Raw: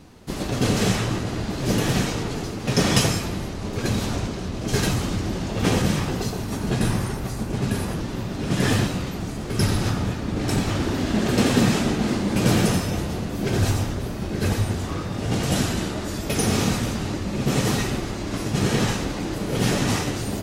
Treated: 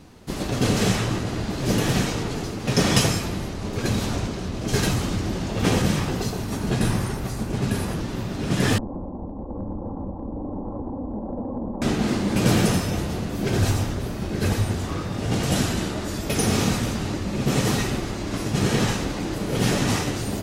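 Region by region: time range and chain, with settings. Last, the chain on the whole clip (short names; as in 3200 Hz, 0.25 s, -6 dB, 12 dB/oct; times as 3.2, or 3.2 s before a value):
8.78–11.82 minimum comb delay 3.7 ms + Chebyshev low-pass 1000 Hz, order 5 + compressor 4:1, threshold -27 dBFS
whole clip: dry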